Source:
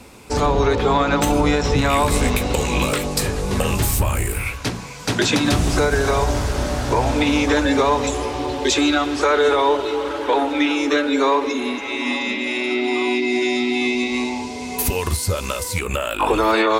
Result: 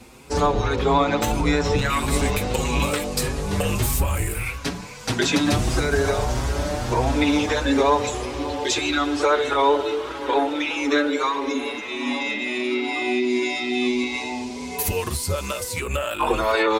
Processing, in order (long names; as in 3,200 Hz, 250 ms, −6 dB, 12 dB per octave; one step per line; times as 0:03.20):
barber-pole flanger 6.1 ms +1.6 Hz